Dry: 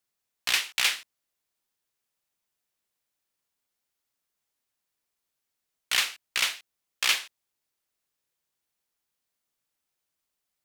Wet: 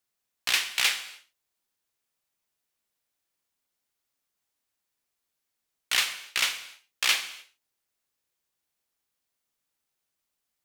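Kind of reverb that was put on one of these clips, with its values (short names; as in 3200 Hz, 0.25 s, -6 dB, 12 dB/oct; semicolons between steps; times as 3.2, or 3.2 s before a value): non-linear reverb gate 0.32 s falling, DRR 9.5 dB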